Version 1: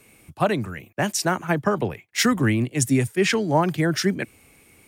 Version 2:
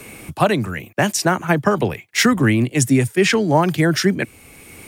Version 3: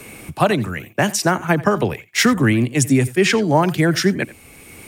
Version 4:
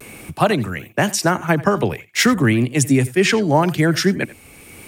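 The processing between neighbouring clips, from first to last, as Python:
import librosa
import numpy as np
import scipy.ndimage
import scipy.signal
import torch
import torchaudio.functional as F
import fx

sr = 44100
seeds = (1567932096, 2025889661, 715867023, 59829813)

y1 = fx.band_squash(x, sr, depth_pct=40)
y1 = F.gain(torch.from_numpy(y1), 5.0).numpy()
y2 = y1 + 10.0 ** (-19.0 / 20.0) * np.pad(y1, (int(86 * sr / 1000.0), 0))[:len(y1)]
y3 = fx.vibrato(y2, sr, rate_hz=0.47, depth_cents=28.0)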